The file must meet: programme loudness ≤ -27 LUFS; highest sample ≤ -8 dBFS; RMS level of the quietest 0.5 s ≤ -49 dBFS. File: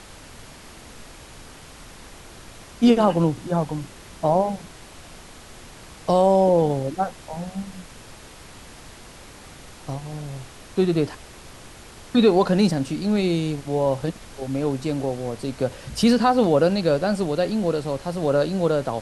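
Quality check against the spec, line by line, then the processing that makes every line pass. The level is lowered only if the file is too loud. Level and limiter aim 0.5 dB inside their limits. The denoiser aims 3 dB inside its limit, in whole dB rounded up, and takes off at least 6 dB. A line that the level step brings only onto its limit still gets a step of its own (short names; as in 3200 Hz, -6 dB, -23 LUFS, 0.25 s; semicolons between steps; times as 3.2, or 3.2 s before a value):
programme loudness -22.0 LUFS: fail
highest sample -5.5 dBFS: fail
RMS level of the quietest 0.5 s -43 dBFS: fail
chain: denoiser 6 dB, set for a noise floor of -43 dBFS; gain -5.5 dB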